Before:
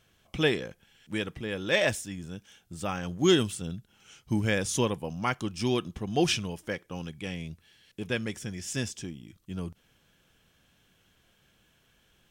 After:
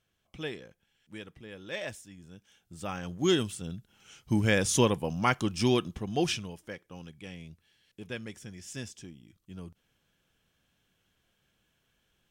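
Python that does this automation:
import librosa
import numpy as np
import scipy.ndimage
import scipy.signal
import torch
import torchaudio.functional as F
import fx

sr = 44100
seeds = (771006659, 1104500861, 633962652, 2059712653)

y = fx.gain(x, sr, db=fx.line((2.15, -12.0), (2.94, -3.5), (3.52, -3.5), (4.71, 3.0), (5.63, 3.0), (6.68, -8.0)))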